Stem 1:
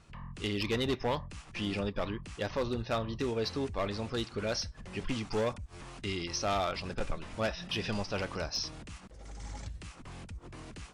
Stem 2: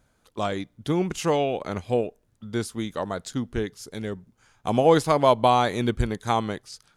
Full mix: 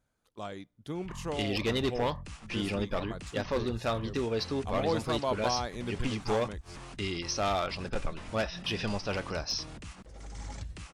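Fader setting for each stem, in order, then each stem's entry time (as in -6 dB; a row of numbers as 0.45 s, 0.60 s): +1.5 dB, -13.0 dB; 0.95 s, 0.00 s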